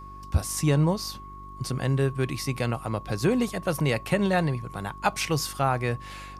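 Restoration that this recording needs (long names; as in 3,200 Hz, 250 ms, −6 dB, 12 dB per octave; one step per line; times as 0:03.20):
click removal
hum removal 49.2 Hz, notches 8
notch filter 1,100 Hz, Q 30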